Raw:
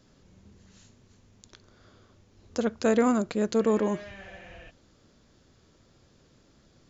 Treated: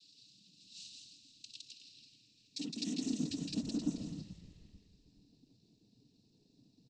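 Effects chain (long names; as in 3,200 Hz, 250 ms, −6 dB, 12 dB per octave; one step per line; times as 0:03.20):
Chebyshev band-stop filter 250–5,000 Hz, order 4
flat-topped bell 2,900 Hz +10 dB
brickwall limiter −26 dBFS, peak gain reduction 6.5 dB
on a send: loudspeakers that aren't time-aligned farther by 56 metres −3 dB, 90 metres −9 dB
on the sum: cochlear-implant simulation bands 12
band-pass filter sweep 3,000 Hz → 940 Hz, 0:01.55–0:05.30
echo with shifted repeats 433 ms, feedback 31%, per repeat −110 Hz, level −15.5 dB
one half of a high-frequency compander decoder only
level +17 dB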